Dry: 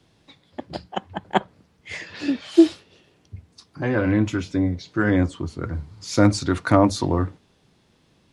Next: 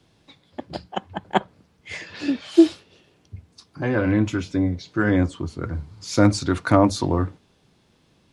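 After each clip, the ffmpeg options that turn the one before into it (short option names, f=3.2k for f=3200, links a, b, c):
-af "bandreject=f=1.9k:w=27"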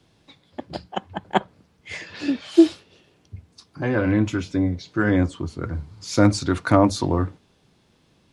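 -af anull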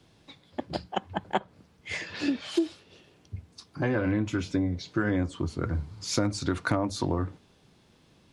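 -af "acompressor=threshold=-23dB:ratio=8"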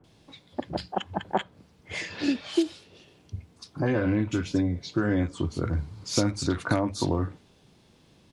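-filter_complex "[0:a]acrossover=split=1500[a][b];[b]adelay=40[c];[a][c]amix=inputs=2:normalize=0,volume=2dB"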